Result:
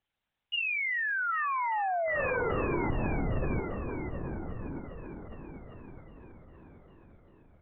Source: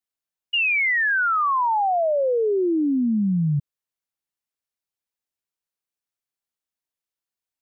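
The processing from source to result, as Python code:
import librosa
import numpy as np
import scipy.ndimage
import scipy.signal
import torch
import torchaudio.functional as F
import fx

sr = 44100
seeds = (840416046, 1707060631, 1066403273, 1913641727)

p1 = fx.over_compress(x, sr, threshold_db=-31.0, ratio=-1.0)
p2 = p1 + fx.echo_heads(p1, sr, ms=397, heads='all three', feedback_pct=51, wet_db=-11, dry=0)
y = fx.lpc_vocoder(p2, sr, seeds[0], excitation='whisper', order=10)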